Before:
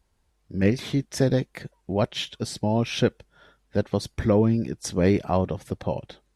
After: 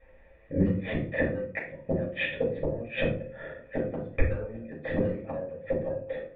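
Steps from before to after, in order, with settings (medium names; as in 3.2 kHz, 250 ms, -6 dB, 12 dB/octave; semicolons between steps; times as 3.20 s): cascade formant filter e; in parallel at -9 dB: sine folder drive 9 dB, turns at -15.5 dBFS; on the sum: inverted gate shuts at -27 dBFS, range -30 dB; on a send: filtered feedback delay 789 ms, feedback 33%, low-pass 1.2 kHz, level -20.5 dB; on the sum: simulated room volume 290 m³, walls furnished, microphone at 6.2 m; tape noise reduction on one side only encoder only; trim +6.5 dB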